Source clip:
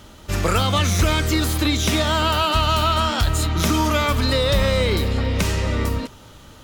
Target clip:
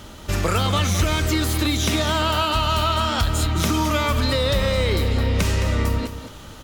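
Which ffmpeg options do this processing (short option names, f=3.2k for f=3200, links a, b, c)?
-af "acompressor=threshold=-26dB:ratio=2,aecho=1:1:215:0.299,volume=4dB"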